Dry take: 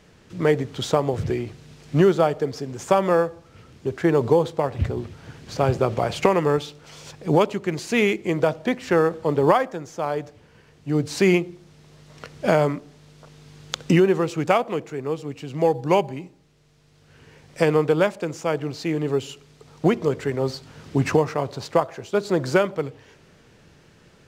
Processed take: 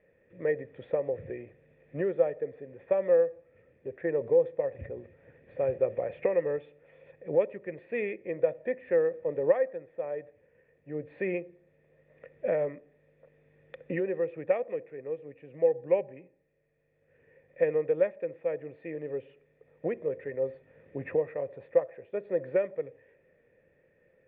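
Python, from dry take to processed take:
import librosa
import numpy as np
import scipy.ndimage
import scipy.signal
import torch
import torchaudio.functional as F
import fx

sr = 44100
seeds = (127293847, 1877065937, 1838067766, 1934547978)

y = fx.formant_cascade(x, sr, vowel='e')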